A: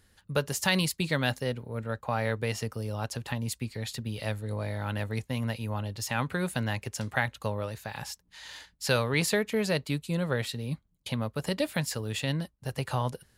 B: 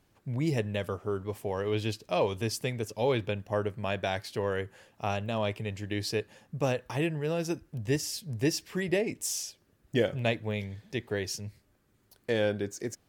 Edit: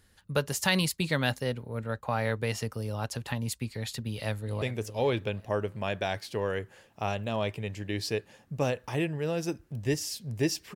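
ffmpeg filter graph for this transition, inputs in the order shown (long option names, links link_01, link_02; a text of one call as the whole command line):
ffmpeg -i cue0.wav -i cue1.wav -filter_complex "[0:a]apad=whole_dur=10.75,atrim=end=10.75,atrim=end=4.622[link_01];[1:a]atrim=start=2.638:end=8.77[link_02];[link_01][link_02]acrossfade=duration=0.004:curve1=hsin:curve2=hsin,asplit=2[link_03][link_04];[link_04]afade=type=in:start_time=4.08:duration=0.01,afade=type=out:start_time=4.62:duration=0.01,aecho=0:1:390|780|1170|1560:0.211349|0.095107|0.0427982|0.0192592[link_05];[link_03][link_05]amix=inputs=2:normalize=0" out.wav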